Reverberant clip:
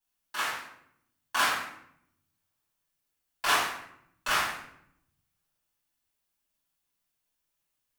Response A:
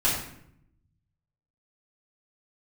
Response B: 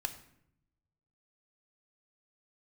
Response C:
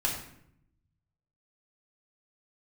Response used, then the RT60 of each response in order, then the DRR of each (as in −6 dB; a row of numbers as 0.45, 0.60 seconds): A; 0.70, 0.75, 0.70 seconds; −7.5, 8.5, −1.5 decibels